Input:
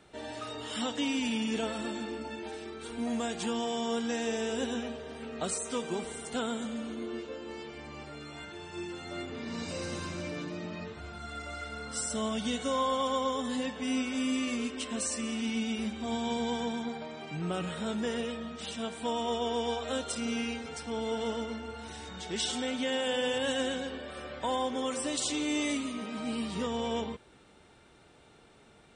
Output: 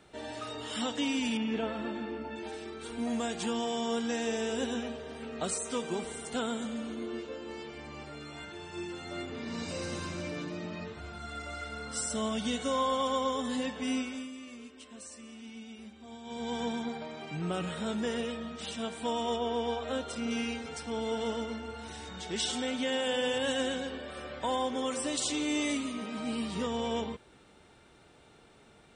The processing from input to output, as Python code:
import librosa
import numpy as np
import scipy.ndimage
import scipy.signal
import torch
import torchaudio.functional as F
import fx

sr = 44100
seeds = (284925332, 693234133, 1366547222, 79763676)

y = fx.lowpass(x, sr, hz=2700.0, slope=12, at=(1.37, 2.36))
y = fx.high_shelf(y, sr, hz=4800.0, db=-11.0, at=(19.36, 20.31))
y = fx.edit(y, sr, fx.fade_down_up(start_s=13.89, length_s=2.76, db=-14.0, fade_s=0.41), tone=tone)